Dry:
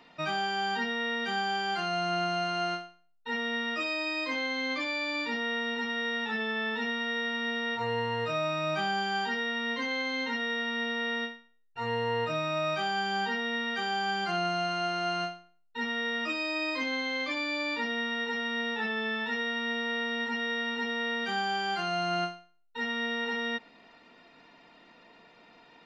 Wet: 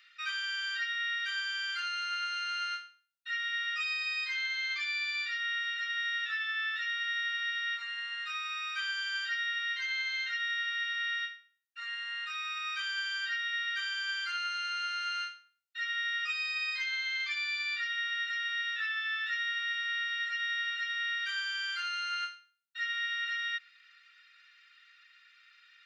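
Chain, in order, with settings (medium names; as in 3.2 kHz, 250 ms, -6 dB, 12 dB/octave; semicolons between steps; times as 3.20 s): steep high-pass 1.3 kHz 72 dB/octave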